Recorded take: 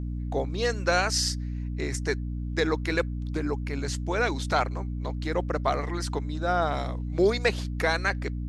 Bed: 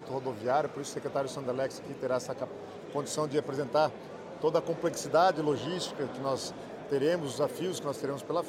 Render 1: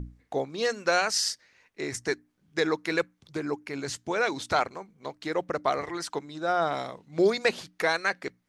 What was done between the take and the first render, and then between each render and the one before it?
hum notches 60/120/180/240/300 Hz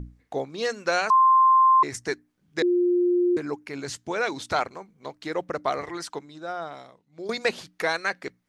1.10–1.83 s: bleep 1.05 kHz -13.5 dBFS; 2.62–3.37 s: bleep 354 Hz -18 dBFS; 5.98–7.29 s: fade out quadratic, to -15 dB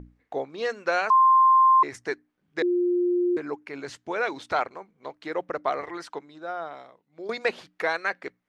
tone controls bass -9 dB, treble -12 dB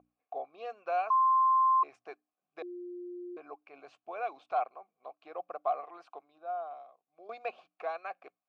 vowel filter a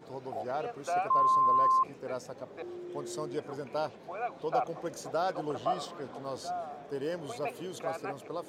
add bed -7 dB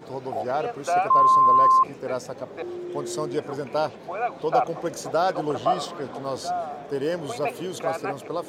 trim +8.5 dB

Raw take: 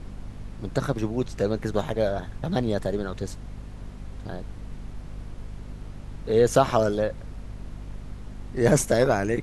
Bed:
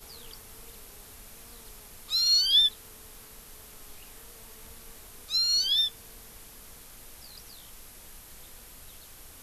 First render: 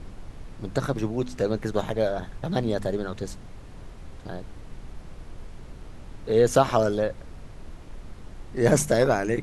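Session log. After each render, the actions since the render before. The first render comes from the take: de-hum 50 Hz, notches 5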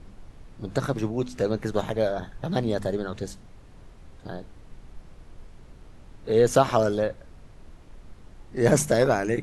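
noise print and reduce 6 dB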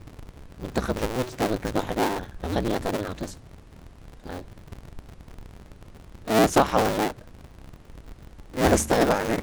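cycle switcher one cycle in 2, inverted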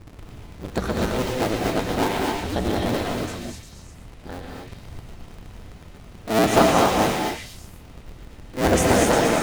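repeats whose band climbs or falls 118 ms, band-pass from 2.7 kHz, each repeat 0.7 oct, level -1 dB; gated-style reverb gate 280 ms rising, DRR -0.5 dB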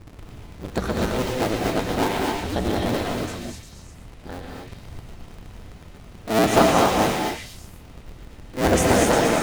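no audible change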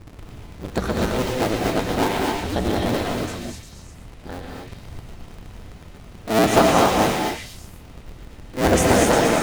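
trim +1.5 dB; peak limiter -3 dBFS, peak gain reduction 3 dB

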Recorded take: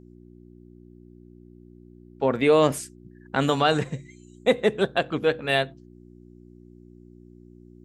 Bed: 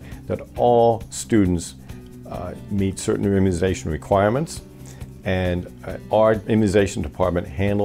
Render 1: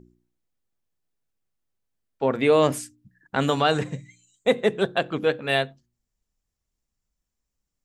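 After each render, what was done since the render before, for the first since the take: de-hum 60 Hz, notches 6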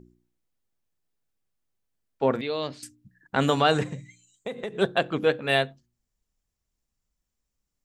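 2.41–2.83 s: four-pole ladder low-pass 4.5 kHz, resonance 80%; 3.92–4.77 s: compression 16:1, threshold -28 dBFS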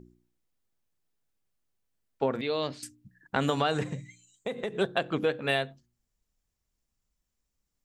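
compression 6:1, threshold -23 dBFS, peak gain reduction 7.5 dB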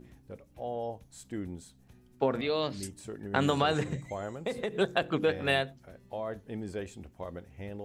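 add bed -20.5 dB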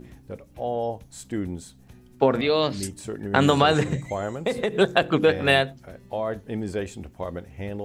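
trim +8.5 dB; peak limiter -2 dBFS, peak gain reduction 1 dB

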